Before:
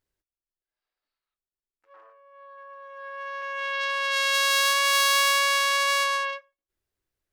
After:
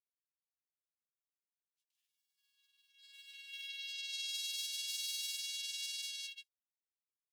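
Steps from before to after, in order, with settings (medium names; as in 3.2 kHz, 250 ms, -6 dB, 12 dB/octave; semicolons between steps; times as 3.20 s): companding laws mixed up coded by A; steep high-pass 3 kHz 36 dB/octave; compression 2.5:1, threshold -41 dBFS, peak gain reduction 13.5 dB; granulator, pitch spread up and down by 0 st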